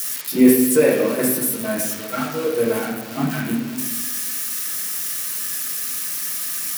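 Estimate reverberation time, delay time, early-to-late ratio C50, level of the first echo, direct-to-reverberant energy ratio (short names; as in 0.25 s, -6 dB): 1.1 s, none, 2.5 dB, none, -6.0 dB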